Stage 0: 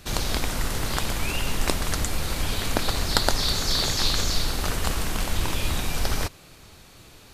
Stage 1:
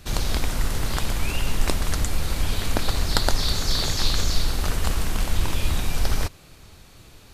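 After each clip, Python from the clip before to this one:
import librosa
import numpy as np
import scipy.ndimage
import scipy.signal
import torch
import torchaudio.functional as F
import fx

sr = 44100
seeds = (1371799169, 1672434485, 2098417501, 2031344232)

y = fx.low_shelf(x, sr, hz=120.0, db=6.5)
y = F.gain(torch.from_numpy(y), -1.5).numpy()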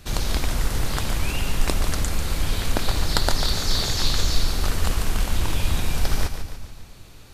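y = fx.echo_split(x, sr, split_hz=320.0, low_ms=194, high_ms=144, feedback_pct=52, wet_db=-9)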